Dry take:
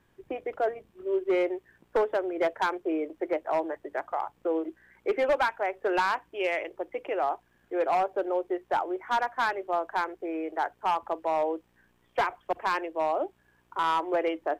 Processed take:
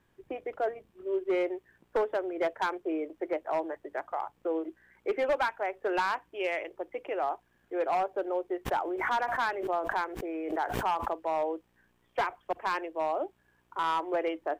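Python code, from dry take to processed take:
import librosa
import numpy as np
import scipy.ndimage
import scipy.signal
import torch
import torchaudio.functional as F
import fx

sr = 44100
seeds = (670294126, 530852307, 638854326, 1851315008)

y = fx.pre_swell(x, sr, db_per_s=40.0, at=(8.65, 11.11), fade=0.02)
y = y * librosa.db_to_amplitude(-3.0)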